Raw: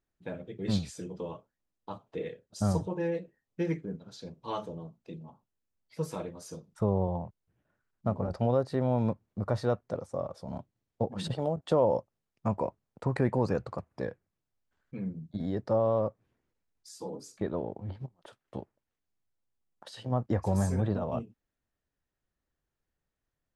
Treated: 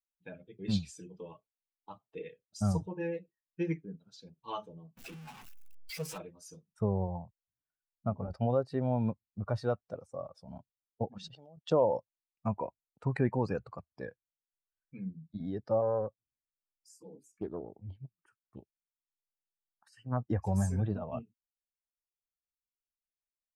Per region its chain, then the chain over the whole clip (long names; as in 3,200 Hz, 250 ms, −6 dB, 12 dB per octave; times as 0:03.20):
0:04.97–0:06.18: converter with a step at zero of −34.5 dBFS + low-shelf EQ 490 Hz −4 dB + highs frequency-modulated by the lows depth 0.22 ms
0:11.18–0:11.71: output level in coarse steps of 22 dB + low-pass with resonance 6,100 Hz, resonance Q 2.7
0:15.81–0:20.17: phaser swept by the level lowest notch 460 Hz, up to 2,700 Hz, full sweep at −30 dBFS + highs frequency-modulated by the lows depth 0.38 ms
whole clip: spectral dynamics exaggerated over time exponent 1.5; parametric band 2,600 Hz +4 dB 0.27 octaves